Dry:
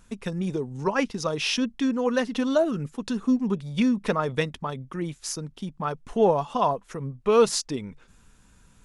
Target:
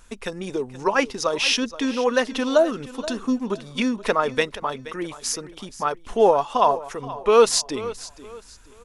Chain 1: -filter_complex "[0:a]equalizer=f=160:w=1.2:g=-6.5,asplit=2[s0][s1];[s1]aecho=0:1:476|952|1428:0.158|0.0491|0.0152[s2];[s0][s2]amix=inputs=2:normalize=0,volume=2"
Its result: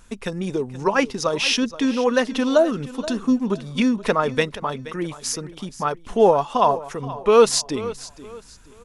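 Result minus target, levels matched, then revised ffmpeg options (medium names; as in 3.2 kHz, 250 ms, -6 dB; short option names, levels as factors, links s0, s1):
125 Hz band +6.0 dB
-filter_complex "[0:a]equalizer=f=160:w=1.2:g=-15.5,asplit=2[s0][s1];[s1]aecho=0:1:476|952|1428:0.158|0.0491|0.0152[s2];[s0][s2]amix=inputs=2:normalize=0,volume=2"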